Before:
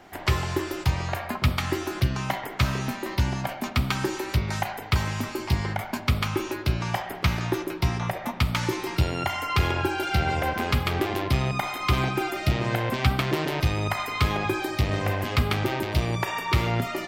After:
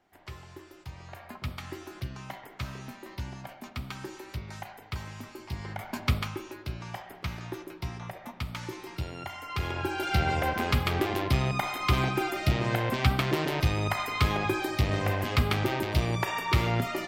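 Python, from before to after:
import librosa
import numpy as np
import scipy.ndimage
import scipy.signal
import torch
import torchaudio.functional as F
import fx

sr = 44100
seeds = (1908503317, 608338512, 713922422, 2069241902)

y = fx.gain(x, sr, db=fx.line((0.83, -20.0), (1.32, -13.0), (5.49, -13.0), (6.1, -2.5), (6.41, -11.5), (9.42, -11.5), (10.13, -2.0)))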